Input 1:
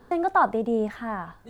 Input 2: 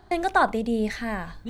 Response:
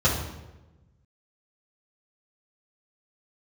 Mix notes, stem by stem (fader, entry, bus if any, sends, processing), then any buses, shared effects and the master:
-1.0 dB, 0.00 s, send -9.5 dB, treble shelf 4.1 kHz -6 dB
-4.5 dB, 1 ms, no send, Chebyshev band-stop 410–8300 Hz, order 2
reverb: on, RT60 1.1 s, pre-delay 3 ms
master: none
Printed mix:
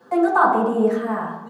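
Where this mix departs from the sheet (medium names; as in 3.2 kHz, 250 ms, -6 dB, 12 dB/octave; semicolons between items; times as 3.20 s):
stem 1: missing treble shelf 4.1 kHz -6 dB; master: extra high-pass 220 Hz 24 dB/octave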